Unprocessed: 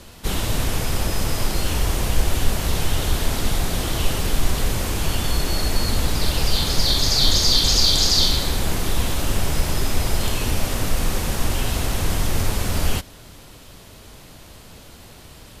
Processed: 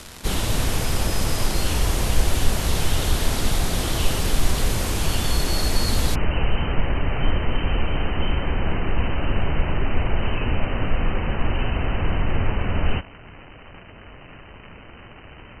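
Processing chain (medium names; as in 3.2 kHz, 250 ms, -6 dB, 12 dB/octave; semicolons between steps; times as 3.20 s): crackle 430 per s -27 dBFS; brick-wall FIR low-pass 13 kHz, from 6.14 s 3.1 kHz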